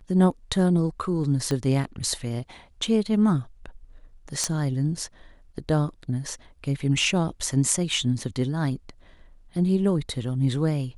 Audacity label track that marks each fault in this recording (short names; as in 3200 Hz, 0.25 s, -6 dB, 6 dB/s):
1.510000	1.510000	pop -15 dBFS
4.440000	4.440000	pop -11 dBFS